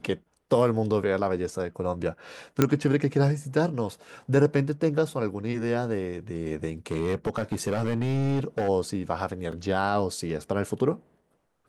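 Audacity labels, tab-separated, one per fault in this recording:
2.620000	2.620000	pop -6 dBFS
6.910000	8.690000	clipped -21.5 dBFS
9.520000	9.520000	dropout 3.6 ms

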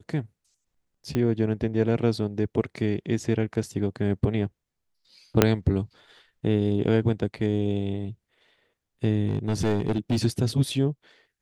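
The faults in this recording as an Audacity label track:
1.150000	1.150000	pop -14 dBFS
5.420000	5.420000	pop -1 dBFS
9.270000	10.180000	clipped -18.5 dBFS

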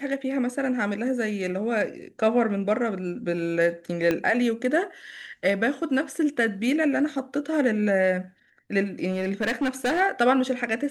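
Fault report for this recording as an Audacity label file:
4.110000	4.110000	pop -12 dBFS
9.110000	10.010000	clipped -20.5 dBFS

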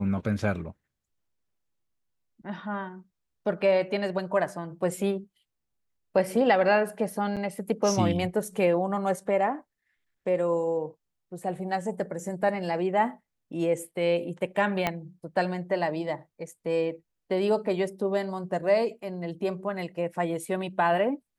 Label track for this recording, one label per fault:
7.360000	7.370000	dropout 7.5 ms
14.870000	14.870000	pop -11 dBFS

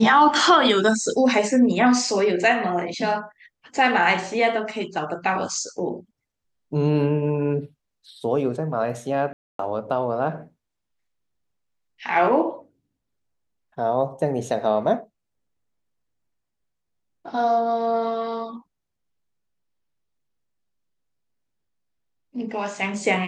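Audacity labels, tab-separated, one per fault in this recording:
9.330000	9.590000	dropout 263 ms

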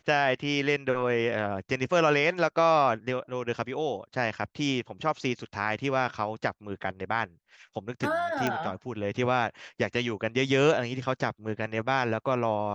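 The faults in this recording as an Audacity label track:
8.470000	8.470000	pop -13 dBFS

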